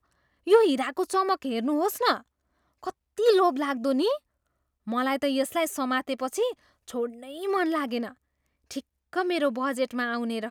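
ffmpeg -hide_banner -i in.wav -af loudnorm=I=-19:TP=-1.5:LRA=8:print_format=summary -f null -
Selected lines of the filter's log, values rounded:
Input Integrated:    -26.8 LUFS
Input True Peak:      -7.5 dBTP
Input LRA:             3.6 LU
Input Threshold:     -37.6 LUFS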